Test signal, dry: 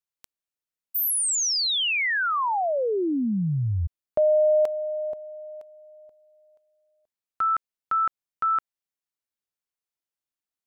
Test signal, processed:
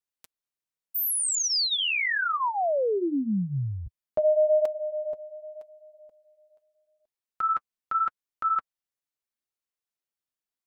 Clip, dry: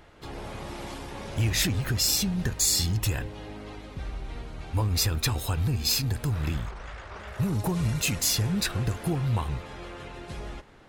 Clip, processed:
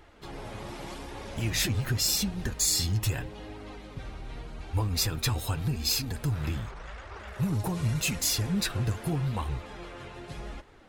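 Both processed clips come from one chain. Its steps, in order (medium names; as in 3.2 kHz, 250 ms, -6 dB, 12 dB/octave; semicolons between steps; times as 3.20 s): flange 0.84 Hz, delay 2.1 ms, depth 7.6 ms, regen -26%; trim +1.5 dB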